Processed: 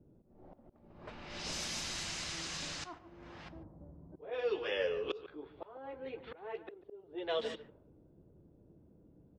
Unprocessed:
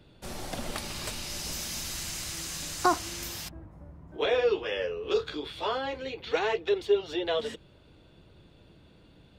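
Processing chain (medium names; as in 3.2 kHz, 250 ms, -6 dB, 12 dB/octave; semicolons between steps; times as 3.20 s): slow attack 773 ms; bass shelf 150 Hz -10 dB; delay 146 ms -13.5 dB; level-controlled noise filter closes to 310 Hz, open at -31.5 dBFS; distance through air 67 m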